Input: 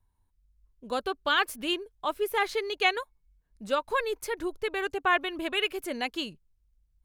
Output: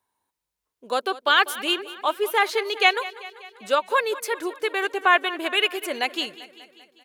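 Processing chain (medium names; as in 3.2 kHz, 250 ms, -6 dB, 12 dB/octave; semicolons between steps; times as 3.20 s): high-pass 400 Hz 12 dB/octave; on a send: feedback delay 196 ms, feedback 60%, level -17 dB; on the sum: trim +7 dB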